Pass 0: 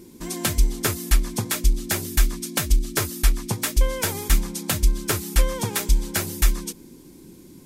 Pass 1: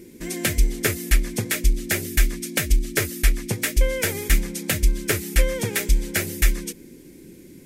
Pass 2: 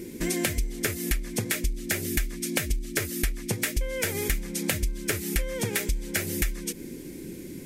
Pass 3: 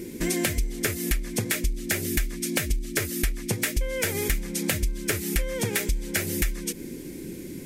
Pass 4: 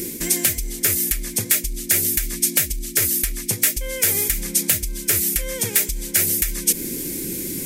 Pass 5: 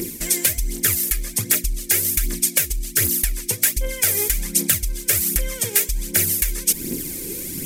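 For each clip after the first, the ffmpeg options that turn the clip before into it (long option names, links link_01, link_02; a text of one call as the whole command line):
ffmpeg -i in.wav -af "equalizer=frequency=500:width_type=o:width=1:gain=6,equalizer=frequency=1000:width_type=o:width=1:gain=-12,equalizer=frequency=2000:width_type=o:width=1:gain=10,equalizer=frequency=4000:width_type=o:width=1:gain=-3" out.wav
ffmpeg -i in.wav -af "acompressor=threshold=-29dB:ratio=12,volume=5.5dB" out.wav
ffmpeg -i in.wav -af "asoftclip=type=tanh:threshold=-12.5dB,volume=2dB" out.wav
ffmpeg -i in.wav -af "areverse,acompressor=threshold=-31dB:ratio=6,areverse,crystalizer=i=3.5:c=0,volume=6dB" out.wav
ffmpeg -i in.wav -filter_complex "[0:a]aphaser=in_gain=1:out_gain=1:delay=2.5:decay=0.54:speed=1.3:type=triangular,asplit=2[link_01][link_02];[link_02]aeval=exprs='sgn(val(0))*max(abs(val(0))-0.0473,0)':channel_layout=same,volume=-9.5dB[link_03];[link_01][link_03]amix=inputs=2:normalize=0,volume=-3.5dB" out.wav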